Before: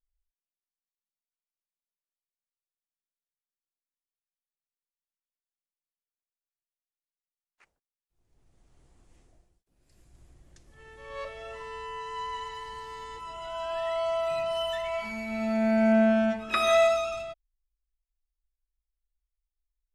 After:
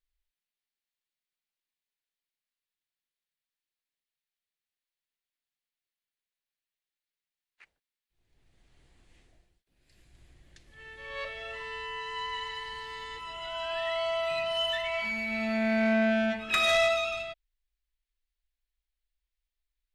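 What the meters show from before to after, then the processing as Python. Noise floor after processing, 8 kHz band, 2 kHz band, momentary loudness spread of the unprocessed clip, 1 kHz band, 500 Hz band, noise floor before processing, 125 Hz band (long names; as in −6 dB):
below −85 dBFS, 0.0 dB, +4.5 dB, 19 LU, −3.0 dB, −3.5 dB, below −85 dBFS, −3.5 dB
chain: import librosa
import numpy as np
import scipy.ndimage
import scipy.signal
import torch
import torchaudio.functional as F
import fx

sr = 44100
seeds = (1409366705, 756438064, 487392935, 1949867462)

y = fx.band_shelf(x, sr, hz=2700.0, db=9.0, octaves=1.7)
y = 10.0 ** (-17.0 / 20.0) * np.tanh(y / 10.0 ** (-17.0 / 20.0))
y = F.gain(torch.from_numpy(y), -2.0).numpy()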